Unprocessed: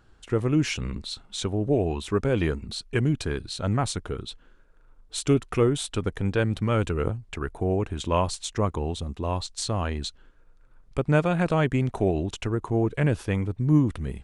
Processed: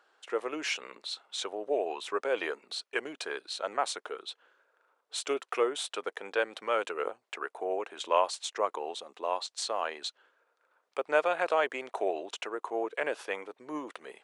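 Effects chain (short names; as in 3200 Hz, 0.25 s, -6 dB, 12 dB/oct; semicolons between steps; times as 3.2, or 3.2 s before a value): HPF 490 Hz 24 dB/oct; high shelf 6100 Hz -8.5 dB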